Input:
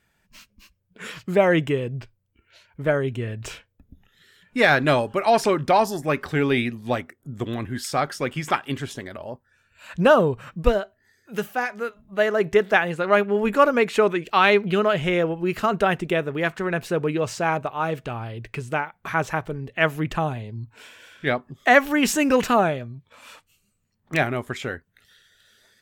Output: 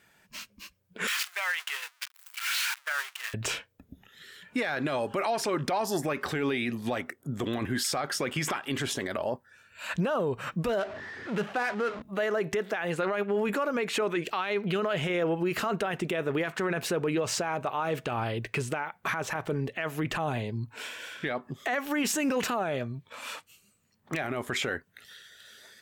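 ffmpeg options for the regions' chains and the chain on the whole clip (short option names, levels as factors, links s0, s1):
-filter_complex "[0:a]asettb=1/sr,asplit=3[s0][s1][s2];[s0]atrim=end=1.074[s3];[s1]atrim=start=1.07:end=3.34,asetpts=PTS-STARTPTS,afade=t=in:d=0.004:c=qsin,afade=t=out:st=2.266:d=0.004:c=qsin,aeval=exprs='val(0)+0.5*0.0501*sgn(val(0))':c=same,highpass=f=1200:w=0.5412,highpass=f=1200:w=1.3066,agate=range=0.0224:threshold=0.0282:ratio=3:release=100:detection=peak[s4];[s2]atrim=start=3.336[s5];[s3][s4]acrossfade=d=0.004:c1=hsin:c2=qsin[s6];[s6][s5]acrossfade=d=0.004:c1=qsin:c2=hsin,asettb=1/sr,asplit=3[s7][s8][s9];[s7]atrim=end=10.794[s10];[s8]atrim=start=10.79:end=12.02,asetpts=PTS-STARTPTS,afade=t=in:d=0.004:c=qsin,afade=t=out:st=1.226:d=0.004:c=qsin,aeval=exprs='val(0)+0.5*0.0133*sgn(val(0))':c=same,adynamicsmooth=sensitivity=8:basefreq=1400,highshelf=f=6000:g=-6[s11];[s9]atrim=start=12.016[s12];[s10][s11]acrossfade=d=0.004:c1=hsin:c2=qsin[s13];[s13][s12]acrossfade=d=0.004:c1=qsin:c2=hsin,highpass=f=240:p=1,acompressor=threshold=0.0501:ratio=6,alimiter=level_in=1.41:limit=0.0631:level=0:latency=1:release=16,volume=0.708,volume=2.11"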